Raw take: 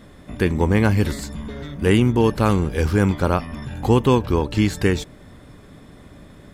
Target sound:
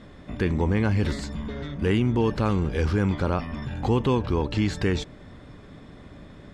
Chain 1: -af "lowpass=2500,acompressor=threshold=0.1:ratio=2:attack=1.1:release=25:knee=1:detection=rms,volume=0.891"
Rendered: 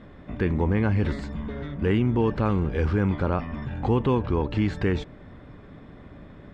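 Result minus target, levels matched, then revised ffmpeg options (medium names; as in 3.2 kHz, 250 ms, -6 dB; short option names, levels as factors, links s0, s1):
4 kHz band -6.0 dB
-af "lowpass=5500,acompressor=threshold=0.1:ratio=2:attack=1.1:release=25:knee=1:detection=rms,volume=0.891"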